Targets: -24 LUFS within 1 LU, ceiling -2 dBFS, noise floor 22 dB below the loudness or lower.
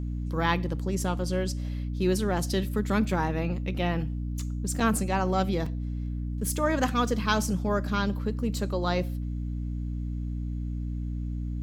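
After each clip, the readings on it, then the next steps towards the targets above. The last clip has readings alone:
dropouts 2; longest dropout 4.1 ms; hum 60 Hz; harmonics up to 300 Hz; hum level -29 dBFS; loudness -29.0 LUFS; peak -9.0 dBFS; loudness target -24.0 LUFS
-> interpolate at 4.8/5.66, 4.1 ms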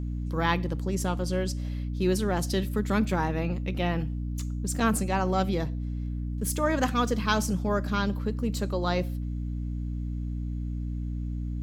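dropouts 0; hum 60 Hz; harmonics up to 300 Hz; hum level -29 dBFS
-> notches 60/120/180/240/300 Hz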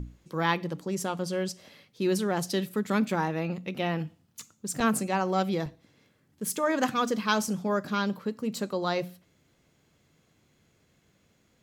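hum none; loudness -29.5 LUFS; peak -10.0 dBFS; loudness target -24.0 LUFS
-> gain +5.5 dB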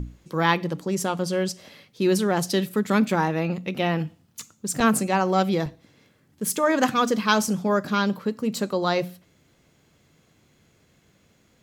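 loudness -24.0 LUFS; peak -4.5 dBFS; noise floor -62 dBFS

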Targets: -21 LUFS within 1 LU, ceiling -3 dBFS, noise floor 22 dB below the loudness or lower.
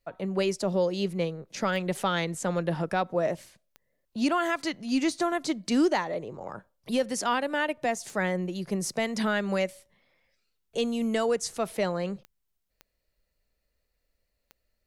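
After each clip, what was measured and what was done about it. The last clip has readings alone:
clicks 6; loudness -28.5 LUFS; peak -13.5 dBFS; loudness target -21.0 LUFS
-> de-click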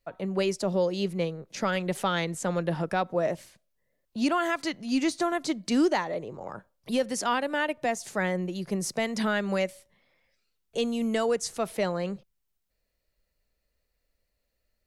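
clicks 0; loudness -28.5 LUFS; peak -13.5 dBFS; loudness target -21.0 LUFS
-> gain +7.5 dB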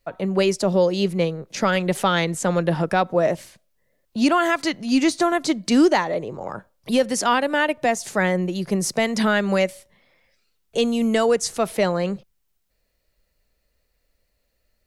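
loudness -21.0 LUFS; peak -6.0 dBFS; noise floor -71 dBFS

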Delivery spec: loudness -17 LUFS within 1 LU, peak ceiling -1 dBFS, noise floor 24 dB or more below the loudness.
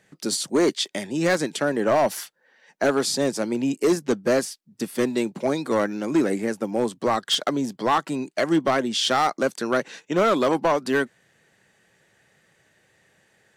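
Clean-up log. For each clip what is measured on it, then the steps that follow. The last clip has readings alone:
clipped 1.6%; flat tops at -14.0 dBFS; loudness -23.5 LUFS; peak -14.0 dBFS; loudness target -17.0 LUFS
-> clip repair -14 dBFS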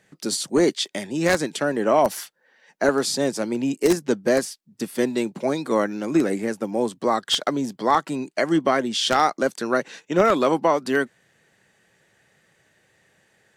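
clipped 0.0%; loudness -22.5 LUFS; peak -5.0 dBFS; loudness target -17.0 LUFS
-> gain +5.5 dB; limiter -1 dBFS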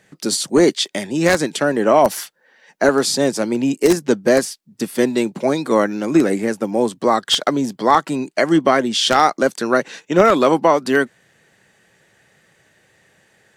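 loudness -17.0 LUFS; peak -1.0 dBFS; noise floor -59 dBFS

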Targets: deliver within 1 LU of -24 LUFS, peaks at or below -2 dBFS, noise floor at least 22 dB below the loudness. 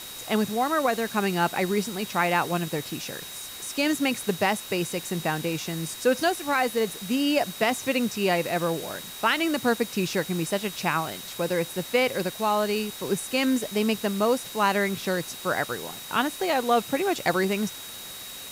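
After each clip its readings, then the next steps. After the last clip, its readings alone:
steady tone 3800 Hz; tone level -42 dBFS; noise floor -40 dBFS; noise floor target -48 dBFS; loudness -26.0 LUFS; peak -9.5 dBFS; loudness target -24.0 LUFS
-> notch 3800 Hz, Q 30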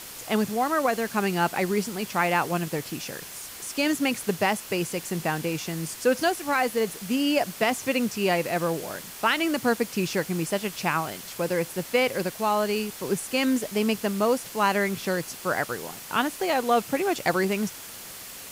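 steady tone none; noise floor -41 dBFS; noise floor target -48 dBFS
-> denoiser 7 dB, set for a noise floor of -41 dBFS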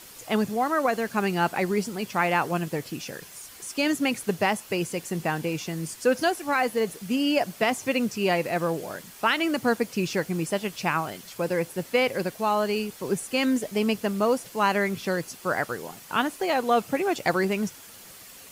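noise floor -47 dBFS; noise floor target -49 dBFS
-> denoiser 6 dB, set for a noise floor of -47 dBFS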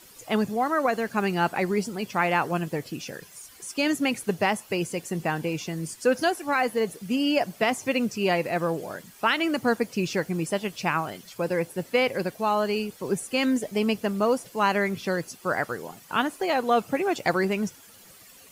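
noise floor -51 dBFS; loudness -26.5 LUFS; peak -10.0 dBFS; loudness target -24.0 LUFS
-> gain +2.5 dB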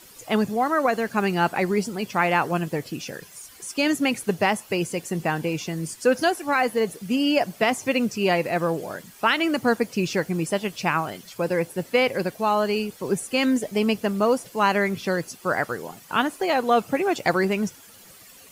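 loudness -24.0 LUFS; peak -7.5 dBFS; noise floor -48 dBFS

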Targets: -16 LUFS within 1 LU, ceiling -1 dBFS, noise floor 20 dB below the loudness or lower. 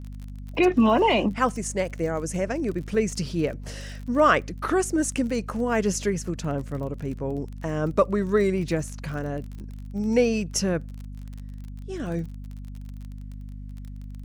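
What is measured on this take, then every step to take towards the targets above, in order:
ticks 33/s; hum 50 Hz; harmonics up to 250 Hz; hum level -34 dBFS; loudness -25.5 LUFS; peak -7.0 dBFS; loudness target -16.0 LUFS
-> de-click; notches 50/100/150/200/250 Hz; gain +9.5 dB; limiter -1 dBFS

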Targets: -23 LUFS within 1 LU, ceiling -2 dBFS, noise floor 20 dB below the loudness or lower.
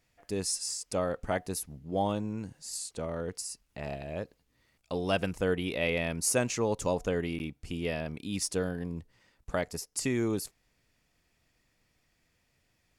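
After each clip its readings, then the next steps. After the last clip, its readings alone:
dropouts 1; longest dropout 9.5 ms; loudness -33.0 LUFS; peak -13.0 dBFS; loudness target -23.0 LUFS
-> interpolate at 7.39, 9.5 ms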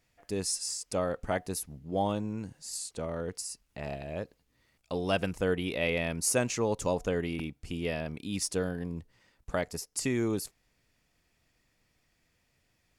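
dropouts 0; loudness -33.0 LUFS; peak -13.0 dBFS; loudness target -23.0 LUFS
-> gain +10 dB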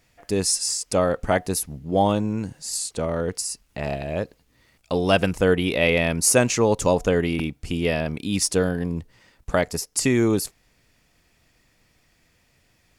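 loudness -23.0 LUFS; peak -3.0 dBFS; noise floor -64 dBFS

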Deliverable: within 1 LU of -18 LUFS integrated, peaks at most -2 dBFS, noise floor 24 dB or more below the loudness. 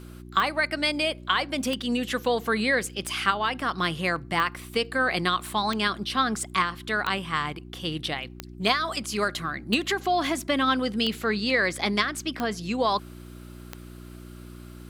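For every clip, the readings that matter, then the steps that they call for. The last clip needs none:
clicks 11; hum 60 Hz; harmonics up to 360 Hz; hum level -40 dBFS; loudness -26.0 LUFS; peak -7.5 dBFS; loudness target -18.0 LUFS
-> de-click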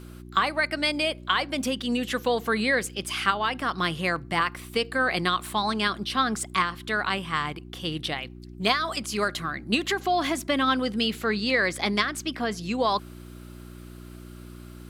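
clicks 0; hum 60 Hz; harmonics up to 360 Hz; hum level -40 dBFS
-> de-hum 60 Hz, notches 6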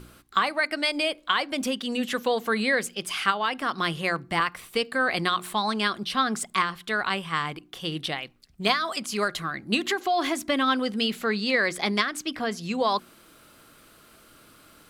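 hum none; loudness -26.5 LUFS; peak -7.5 dBFS; loudness target -18.0 LUFS
-> gain +8.5 dB; limiter -2 dBFS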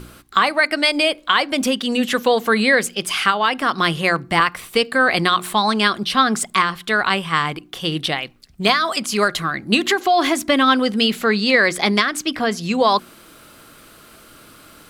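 loudness -18.0 LUFS; peak -2.0 dBFS; noise floor -46 dBFS

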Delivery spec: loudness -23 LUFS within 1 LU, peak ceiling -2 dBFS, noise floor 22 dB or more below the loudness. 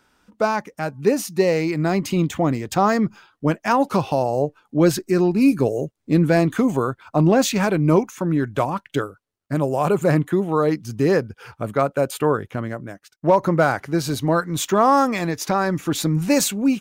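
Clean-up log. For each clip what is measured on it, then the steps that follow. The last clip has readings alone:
loudness -20.5 LUFS; peak -6.0 dBFS; loudness target -23.0 LUFS
-> gain -2.5 dB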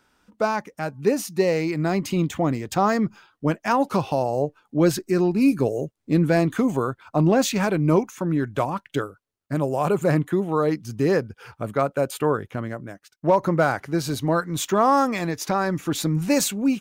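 loudness -23.0 LUFS; peak -8.5 dBFS; noise floor -71 dBFS

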